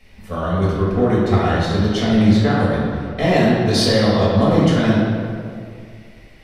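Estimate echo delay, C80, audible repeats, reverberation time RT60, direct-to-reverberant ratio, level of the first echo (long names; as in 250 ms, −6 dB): no echo audible, 0.5 dB, no echo audible, 2.2 s, −8.5 dB, no echo audible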